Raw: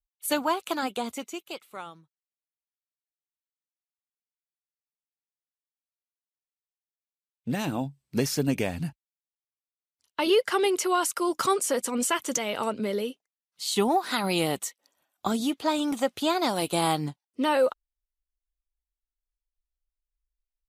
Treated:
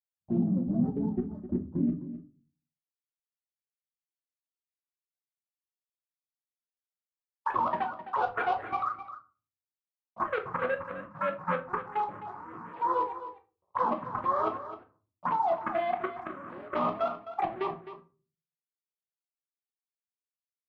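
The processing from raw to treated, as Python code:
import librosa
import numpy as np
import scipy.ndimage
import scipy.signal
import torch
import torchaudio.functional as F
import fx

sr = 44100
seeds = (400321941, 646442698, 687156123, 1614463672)

y = fx.octave_mirror(x, sr, pivot_hz=450.0)
y = fx.leveller(y, sr, passes=5)
y = fx.filter_sweep_bandpass(y, sr, from_hz=210.0, to_hz=1100.0, start_s=1.41, end_s=4.34, q=3.9)
y = fx.env_phaser(y, sr, low_hz=260.0, high_hz=2600.0, full_db=-20.5)
y = fx.level_steps(y, sr, step_db=17)
y = y + 10.0 ** (-12.5 / 20.0) * np.pad(y, (int(260 * sr / 1000.0), 0))[:len(y)]
y = fx.room_shoebox(y, sr, seeds[0], volume_m3=200.0, walls='furnished', distance_m=0.98)
y = y * 10.0 ** (5.5 / 20.0)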